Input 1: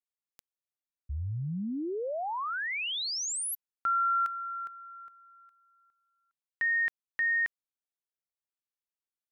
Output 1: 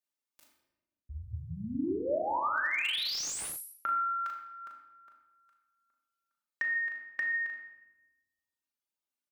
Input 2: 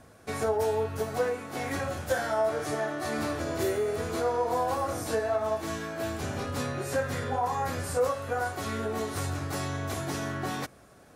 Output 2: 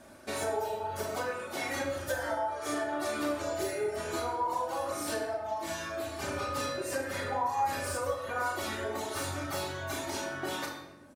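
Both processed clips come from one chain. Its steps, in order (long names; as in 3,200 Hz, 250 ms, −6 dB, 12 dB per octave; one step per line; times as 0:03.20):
high-pass filter 140 Hz 6 dB per octave
flutter between parallel walls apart 6.5 metres, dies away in 0.43 s
dynamic equaliser 230 Hz, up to −7 dB, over −49 dBFS, Q 1.9
comb filter 3.3 ms, depth 57%
downward compressor 6 to 1, threshold −29 dBFS
reverb reduction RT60 1.3 s
rectangular room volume 560 cubic metres, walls mixed, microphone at 1.2 metres
slew-rate limiting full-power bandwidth 120 Hz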